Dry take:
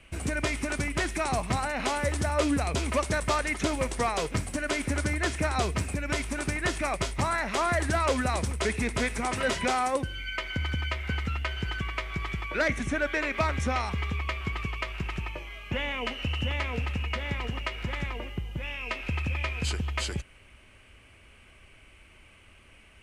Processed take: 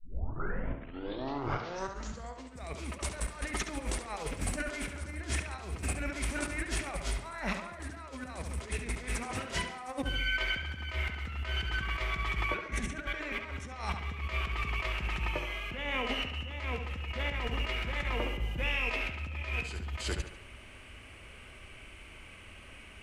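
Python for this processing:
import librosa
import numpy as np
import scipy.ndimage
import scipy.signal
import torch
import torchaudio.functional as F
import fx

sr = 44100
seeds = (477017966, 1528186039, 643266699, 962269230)

y = fx.tape_start_head(x, sr, length_s=2.81)
y = fx.over_compress(y, sr, threshold_db=-34.0, ratio=-0.5)
y = fx.echo_tape(y, sr, ms=69, feedback_pct=53, wet_db=-6.0, lp_hz=4700.0, drive_db=19.0, wow_cents=28)
y = y * librosa.db_to_amplitude(-1.0)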